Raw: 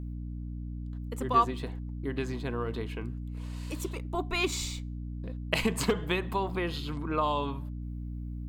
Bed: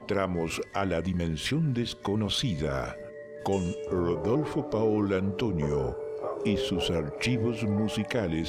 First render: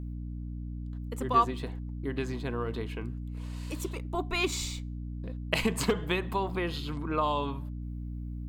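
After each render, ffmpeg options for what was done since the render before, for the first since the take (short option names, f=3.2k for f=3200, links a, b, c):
-af anull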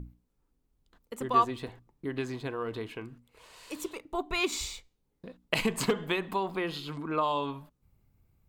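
-af "bandreject=f=60:t=h:w=6,bandreject=f=120:t=h:w=6,bandreject=f=180:t=h:w=6,bandreject=f=240:t=h:w=6,bandreject=f=300:t=h:w=6"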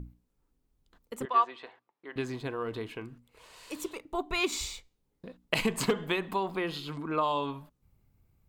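-filter_complex "[0:a]asettb=1/sr,asplit=3[a][b][c];[a]atrim=end=1.254[d];[b]atrim=start=1.25:end=2.16,asetpts=PTS-STARTPTS,afade=t=in:d=0.004:c=qsin,afade=t=out:st=0.906:d=0.004:c=qsin,highpass=670,lowpass=3.3k[e];[c]atrim=start=2.156[f];[d][e]acrossfade=d=0.004:c1=hsin:c2=qsin[g];[g][f]acrossfade=d=0.004:c1=qsin:c2=hsin"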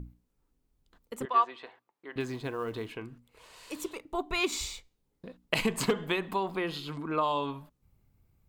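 -filter_complex "[0:a]asettb=1/sr,asplit=3[a][b][c];[a]atrim=end=2.204[d];[b]atrim=start=2.2:end=2.93,asetpts=PTS-STARTPTS,afade=t=in:d=0.004:c=qsin,afade=t=out:st=0.726:d=0.004:c=qsin,acrusher=bits=8:mode=log:mix=0:aa=0.000001[e];[c]atrim=start=2.926[f];[d][e]acrossfade=d=0.004:c1=hsin:c2=qsin[g];[g][f]acrossfade=d=0.004:c1=qsin:c2=hsin"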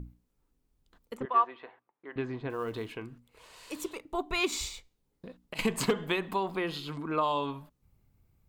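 -filter_complex "[0:a]asettb=1/sr,asplit=3[a][b][c];[a]atrim=end=1.174[d];[b]atrim=start=1.17:end=2.5,asetpts=PTS-STARTPTS,afade=t=in:d=0.004:c=qsin,afade=t=out:st=1.326:d=0.004:c=qsin,lowpass=2.3k[e];[c]atrim=start=2.496[f];[d][e]acrossfade=d=0.004:c1=hsin:c2=qsin[g];[g][f]acrossfade=d=0.004:c1=qsin:c2=hsin,asettb=1/sr,asplit=3[h][i][j];[h]atrim=end=4.684[k];[i]atrim=start=4.68:end=5.59,asetpts=PTS-STARTPTS,afade=t=in:d=0.004:c=qsin,afade=t=out:st=0.906:d=0.004:c=qsin,acompressor=threshold=-38dB:ratio=6:attack=3.2:release=140:knee=1:detection=peak[l];[j]atrim=start=5.586[m];[k][l]acrossfade=d=0.004:c1=hsin:c2=qsin[n];[n][m]acrossfade=d=0.004:c1=qsin:c2=hsin"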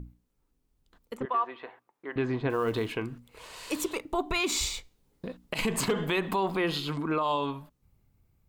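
-af "dynaudnorm=f=260:g=13:m=8dB,alimiter=limit=-19dB:level=0:latency=1:release=59"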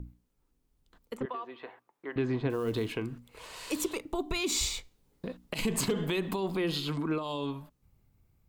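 -filter_complex "[0:a]acrossover=split=480|3000[a][b][c];[b]acompressor=threshold=-40dB:ratio=6[d];[a][d][c]amix=inputs=3:normalize=0"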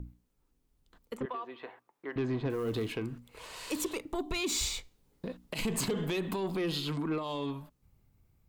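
-af "asoftclip=type=tanh:threshold=-25dB"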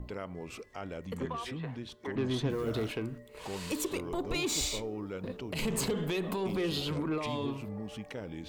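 -filter_complex "[1:a]volume=-12.5dB[a];[0:a][a]amix=inputs=2:normalize=0"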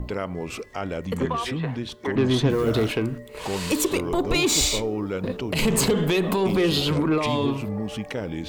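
-af "volume=11dB"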